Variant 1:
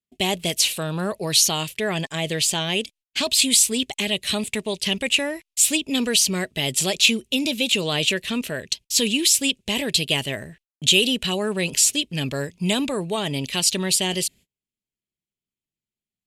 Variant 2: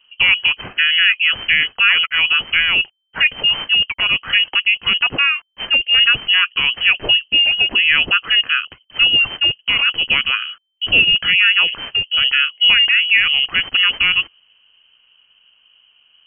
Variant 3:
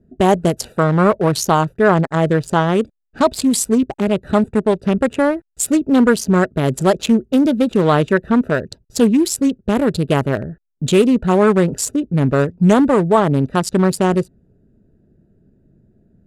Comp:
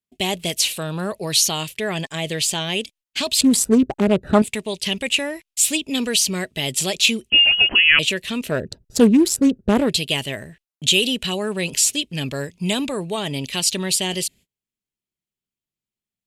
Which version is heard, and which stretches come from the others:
1
3.41–4.42 s: from 3
7.30–7.99 s: from 2
8.55–9.87 s: from 3, crossfade 0.24 s

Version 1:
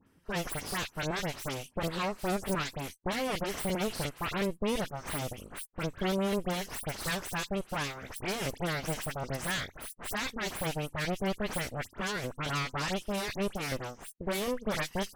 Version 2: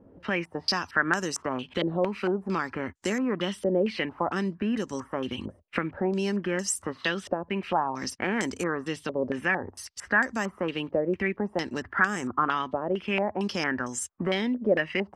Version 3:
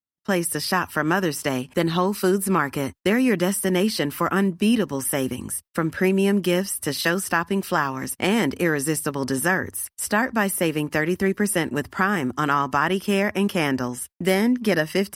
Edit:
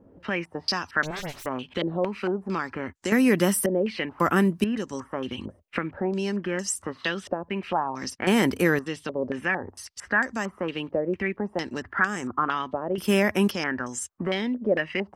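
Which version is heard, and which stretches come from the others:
2
1.03–1.46 s: from 1
3.12–3.66 s: from 3
4.20–4.64 s: from 3
8.27–8.79 s: from 3
12.98–13.51 s: from 3

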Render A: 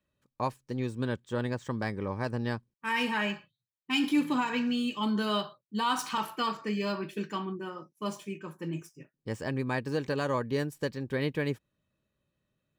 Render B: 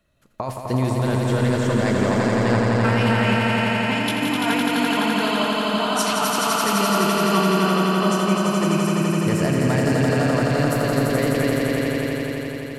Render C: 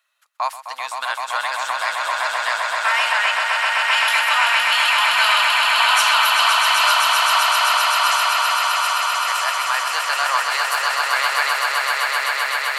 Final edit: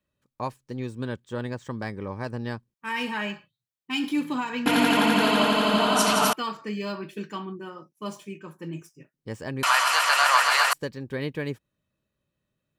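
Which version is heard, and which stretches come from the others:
A
4.66–6.33 s: from B
9.63–10.73 s: from C

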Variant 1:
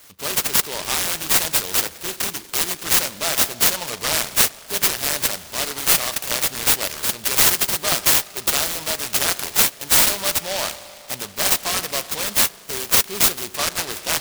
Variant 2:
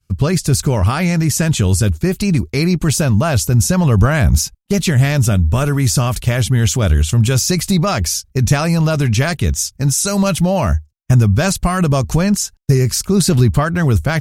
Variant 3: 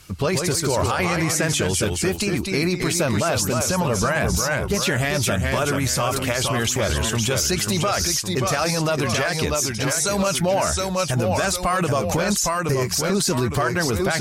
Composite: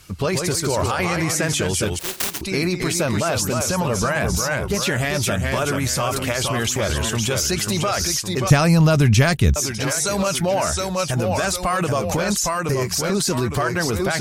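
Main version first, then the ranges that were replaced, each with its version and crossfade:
3
1.99–2.41 s: from 1
8.50–9.56 s: from 2

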